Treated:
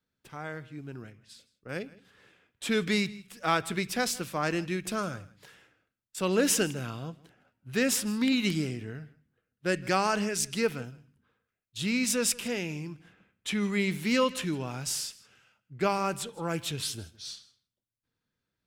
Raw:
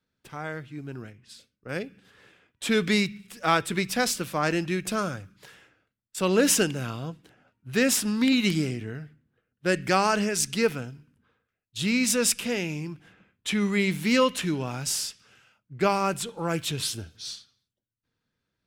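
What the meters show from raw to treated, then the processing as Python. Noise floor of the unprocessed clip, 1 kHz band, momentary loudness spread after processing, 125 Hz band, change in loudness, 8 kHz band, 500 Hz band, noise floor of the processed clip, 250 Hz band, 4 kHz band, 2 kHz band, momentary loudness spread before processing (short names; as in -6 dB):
-83 dBFS, -4.0 dB, 16 LU, -4.0 dB, -4.0 dB, -4.0 dB, -4.0 dB, under -85 dBFS, -4.0 dB, -4.0 dB, -4.0 dB, 16 LU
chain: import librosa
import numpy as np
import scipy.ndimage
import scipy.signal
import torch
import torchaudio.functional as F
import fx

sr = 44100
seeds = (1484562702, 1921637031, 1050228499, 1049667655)

y = x + 10.0 ** (-21.5 / 20.0) * np.pad(x, (int(161 * sr / 1000.0), 0))[:len(x)]
y = y * librosa.db_to_amplitude(-4.0)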